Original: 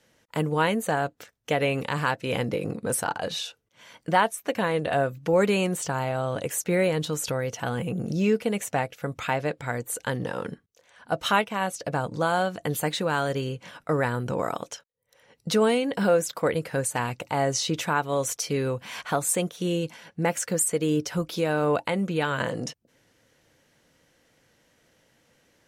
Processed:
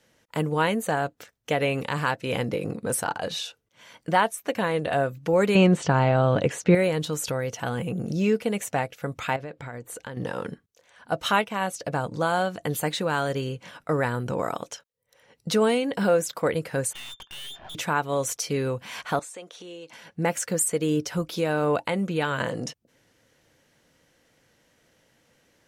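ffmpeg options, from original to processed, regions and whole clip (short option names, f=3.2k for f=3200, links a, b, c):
-filter_complex "[0:a]asettb=1/sr,asplit=3[a][b][c];[a]atrim=end=5.554[d];[b]atrim=start=5.55:end=6.75,asetpts=PTS-STARTPTS,afade=t=in:d=0.004:c=qsin,afade=t=out:st=1.196:d=0.004:c=qsin,lowpass=4.1k,equalizer=f=170:w=0.62:g=4.5,acontrast=39[e];[c]atrim=start=6.746[f];[d][e]acrossfade=d=0.004:c1=hsin:c2=qsin[g];[g][f]acrossfade=d=0.004:c1=qsin:c2=hsin,asettb=1/sr,asplit=3[h][i][j];[h]atrim=end=9.364[k];[i]atrim=start=9.36:end=10.17,asetpts=PTS-STARTPTS,afade=t=in:d=0.004:c=qsin,afade=t=out:st=0.806:d=0.004:c=qsin,aemphasis=mode=reproduction:type=cd,acompressor=threshold=-33dB:ratio=5:attack=3.2:release=140:knee=1:detection=peak[l];[j]atrim=start=10.166[m];[k][l]acrossfade=d=0.004:c1=hsin:c2=qsin[n];[n][m]acrossfade=d=0.004:c1=qsin:c2=hsin,asettb=1/sr,asplit=3[o][p][q];[o]atrim=end=16.934[r];[p]atrim=start=16.93:end=17.75,asetpts=PTS-STARTPTS,afade=t=in:d=0.004:c=qsin,afade=t=out:st=0.816:d=0.004:c=qsin,lowpass=f=3.1k:t=q:w=0.5098,lowpass=f=3.1k:t=q:w=0.6013,lowpass=f=3.1k:t=q:w=0.9,lowpass=f=3.1k:t=q:w=2.563,afreqshift=-3700,aeval=exprs='(tanh(79.4*val(0)+0.7)-tanh(0.7))/79.4':c=same[s];[q]atrim=start=17.746[t];[r][s]acrossfade=d=0.004:c1=hsin:c2=qsin[u];[u][t]acrossfade=d=0.004:c1=qsin:c2=hsin,asettb=1/sr,asplit=3[v][w][x];[v]atrim=end=19.194[y];[w]atrim=start=19.19:end=19.93,asetpts=PTS-STARTPTS,afade=t=in:d=0.004:c=qsin,afade=t=out:st=0.736:d=0.004:c=qsin,acompressor=threshold=-32dB:ratio=10:attack=3.2:release=140:knee=1:detection=peak,highpass=400,lowpass=6.7k[z];[x]atrim=start=19.926[aa];[y][z]acrossfade=d=0.004:c1=hsin:c2=qsin[ab];[ab][aa]acrossfade=d=0.004:c1=qsin:c2=hsin"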